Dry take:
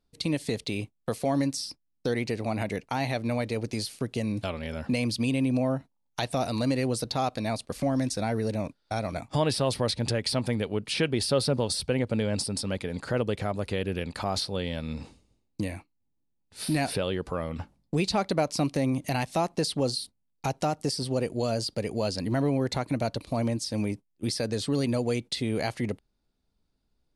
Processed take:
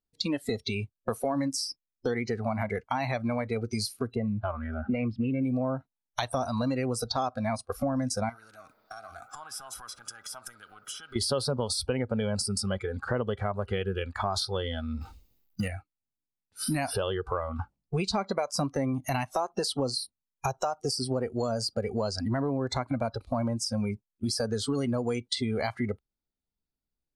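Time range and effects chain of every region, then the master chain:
4.15–5.43 s: low-pass 2.1 kHz + loudspeaker Doppler distortion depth 0.11 ms
8.29–11.16 s: compression 8:1, threshold -33 dBFS + feedback echo behind a band-pass 65 ms, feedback 84%, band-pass 780 Hz, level -16 dB + spectrum-flattening compressor 2:1
15.01–15.68 s: companding laws mixed up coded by mu + low-pass 3.9 kHz 6 dB/octave + treble shelf 2.1 kHz +11.5 dB
whole clip: spectral noise reduction 19 dB; dynamic bell 1.1 kHz, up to +5 dB, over -51 dBFS, Q 3.2; compression 4:1, threshold -30 dBFS; trim +4 dB

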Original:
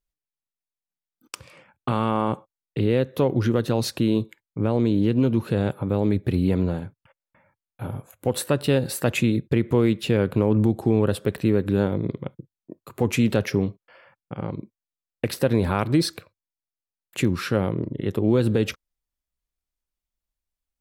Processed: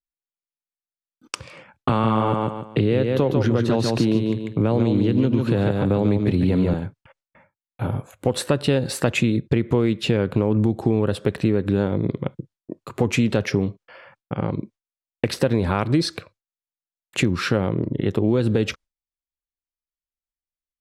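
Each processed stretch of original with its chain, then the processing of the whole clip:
1.89–6.74 s: feedback delay 145 ms, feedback 23%, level -5 dB + three bands compressed up and down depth 40%
whole clip: gate with hold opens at -49 dBFS; low-pass 7.6 kHz 12 dB/octave; compression 2.5:1, threshold -25 dBFS; trim +7 dB

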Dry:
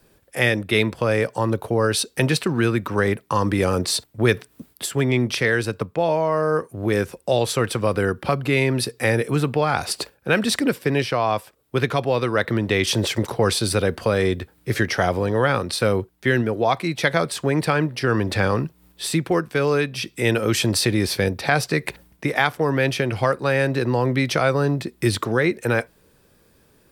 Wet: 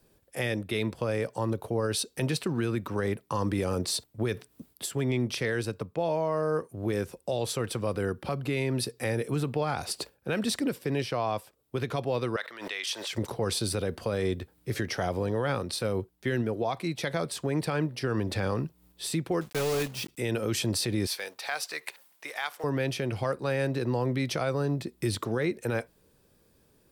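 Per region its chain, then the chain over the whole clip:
12.36–13.13 s: high-pass 1.2 kHz + treble shelf 6.3 kHz -8 dB + swell ahead of each attack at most 65 dB/s
19.41–20.19 s: block-companded coder 3-bit + overload inside the chain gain 17 dB
21.07–22.64 s: companding laws mixed up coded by mu + high-pass 940 Hz
whole clip: peaking EQ 1.7 kHz -4.5 dB 1.6 oct; peak limiter -12.5 dBFS; trim -6.5 dB

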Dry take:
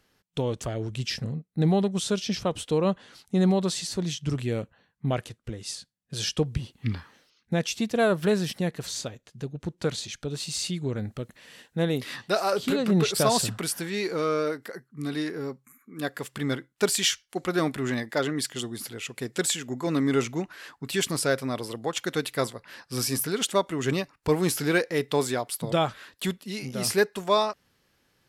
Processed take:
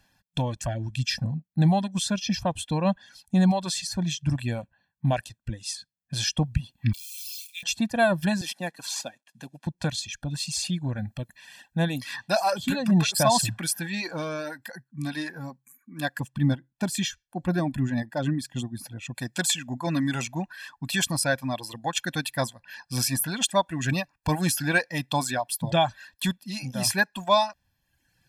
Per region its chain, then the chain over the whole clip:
6.93–7.63 s: zero-crossing glitches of -31.5 dBFS + steep high-pass 2.2 kHz 96 dB/octave + flutter echo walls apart 5.6 m, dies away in 0.23 s
8.41–9.67 s: CVSD coder 64 kbps + Bessel high-pass 300 Hz, order 4
16.20–19.15 s: tilt shelf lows +7.5 dB, about 690 Hz + tremolo 3.8 Hz, depth 38%
whole clip: comb 1.2 ms, depth 94%; reverb removal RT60 0.96 s

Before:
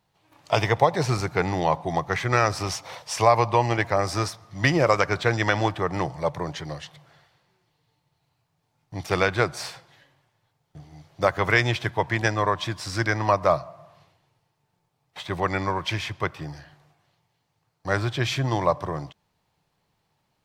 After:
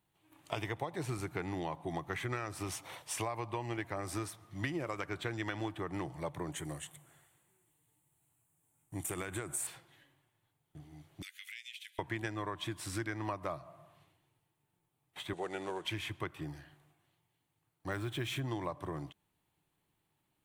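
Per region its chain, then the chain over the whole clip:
6.52–9.67 s: resonant high shelf 6.2 kHz +8.5 dB, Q 3 + compression 4:1, threshold -25 dBFS
11.22–11.99 s: steep high-pass 2.3 kHz + compression, threshold -36 dBFS
15.33–15.85 s: CVSD coder 64 kbps + cabinet simulation 260–7600 Hz, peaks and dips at 280 Hz -7 dB, 440 Hz +7 dB, 750 Hz +4 dB, 1.1 kHz -10 dB, 2.2 kHz -8 dB, 5.1 kHz -4 dB
17.92–18.40 s: companding laws mixed up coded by mu + band-stop 4.6 kHz, Q 17
whole clip: FFT filter 220 Hz 0 dB, 320 Hz +7 dB, 490 Hz -4 dB, 3.3 kHz +2 dB, 5.1 kHz -8 dB, 8.9 kHz +8 dB; compression, threshold -26 dBFS; trim -8 dB

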